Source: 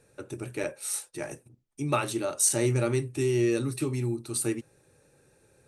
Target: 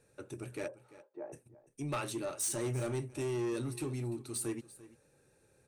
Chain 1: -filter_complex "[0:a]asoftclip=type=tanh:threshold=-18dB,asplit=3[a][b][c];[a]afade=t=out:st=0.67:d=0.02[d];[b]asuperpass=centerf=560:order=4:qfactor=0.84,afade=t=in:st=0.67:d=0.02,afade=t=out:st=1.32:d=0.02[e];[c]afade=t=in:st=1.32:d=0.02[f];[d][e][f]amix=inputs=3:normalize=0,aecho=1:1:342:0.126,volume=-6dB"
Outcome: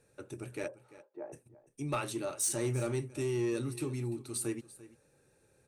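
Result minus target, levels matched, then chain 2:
soft clip: distortion -7 dB
-filter_complex "[0:a]asoftclip=type=tanh:threshold=-24dB,asplit=3[a][b][c];[a]afade=t=out:st=0.67:d=0.02[d];[b]asuperpass=centerf=560:order=4:qfactor=0.84,afade=t=in:st=0.67:d=0.02,afade=t=out:st=1.32:d=0.02[e];[c]afade=t=in:st=1.32:d=0.02[f];[d][e][f]amix=inputs=3:normalize=0,aecho=1:1:342:0.126,volume=-6dB"

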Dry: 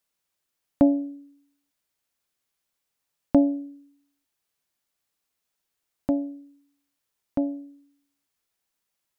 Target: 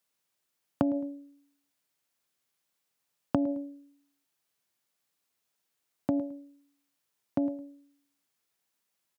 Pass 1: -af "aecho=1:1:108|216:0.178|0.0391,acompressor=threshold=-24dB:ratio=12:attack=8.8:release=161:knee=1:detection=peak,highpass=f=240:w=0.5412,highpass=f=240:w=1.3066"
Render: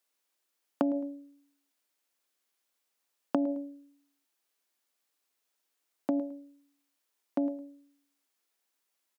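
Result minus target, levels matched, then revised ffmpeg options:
125 Hz band -12.5 dB
-af "aecho=1:1:108|216:0.178|0.0391,acompressor=threshold=-24dB:ratio=12:attack=8.8:release=161:knee=1:detection=peak,highpass=f=95:w=0.5412,highpass=f=95:w=1.3066"

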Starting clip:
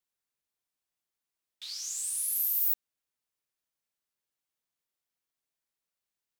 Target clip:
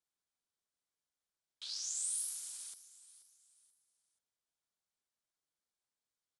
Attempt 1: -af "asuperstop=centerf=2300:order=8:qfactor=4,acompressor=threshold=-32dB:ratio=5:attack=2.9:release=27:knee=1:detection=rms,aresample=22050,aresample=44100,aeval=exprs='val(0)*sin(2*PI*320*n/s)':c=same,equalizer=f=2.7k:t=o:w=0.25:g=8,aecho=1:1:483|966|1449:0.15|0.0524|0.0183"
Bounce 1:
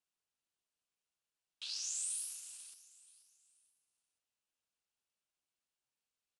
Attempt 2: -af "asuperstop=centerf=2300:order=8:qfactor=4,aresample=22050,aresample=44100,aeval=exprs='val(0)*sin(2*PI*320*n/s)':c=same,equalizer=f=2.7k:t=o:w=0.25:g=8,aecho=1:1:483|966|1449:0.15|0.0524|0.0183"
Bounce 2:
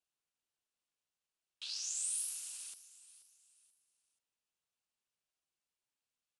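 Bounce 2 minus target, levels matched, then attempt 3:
2000 Hz band +6.0 dB
-af "asuperstop=centerf=2300:order=8:qfactor=4,aresample=22050,aresample=44100,aeval=exprs='val(0)*sin(2*PI*320*n/s)':c=same,equalizer=f=2.7k:t=o:w=0.25:g=-3.5,aecho=1:1:483|966|1449:0.15|0.0524|0.0183"

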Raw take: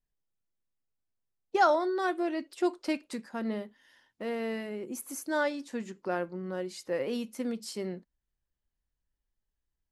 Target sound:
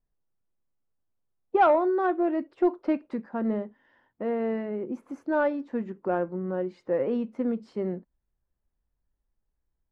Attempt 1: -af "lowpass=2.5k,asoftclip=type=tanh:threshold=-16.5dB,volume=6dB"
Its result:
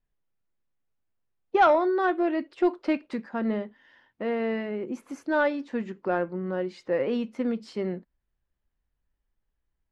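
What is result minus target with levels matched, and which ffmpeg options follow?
2000 Hz band +4.5 dB
-af "lowpass=1.2k,asoftclip=type=tanh:threshold=-16.5dB,volume=6dB"

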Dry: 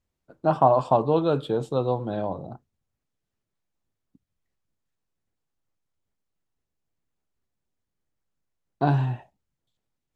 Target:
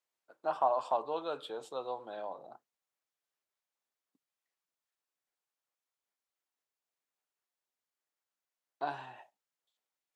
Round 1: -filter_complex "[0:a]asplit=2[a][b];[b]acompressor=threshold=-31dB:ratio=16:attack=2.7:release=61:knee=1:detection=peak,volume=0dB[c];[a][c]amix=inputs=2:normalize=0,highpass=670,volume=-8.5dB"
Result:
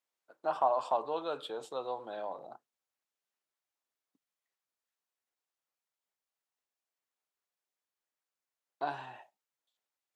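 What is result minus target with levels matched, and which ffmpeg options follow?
compressor: peak gain reduction -9 dB
-filter_complex "[0:a]asplit=2[a][b];[b]acompressor=threshold=-40.5dB:ratio=16:attack=2.7:release=61:knee=1:detection=peak,volume=0dB[c];[a][c]amix=inputs=2:normalize=0,highpass=670,volume=-8.5dB"

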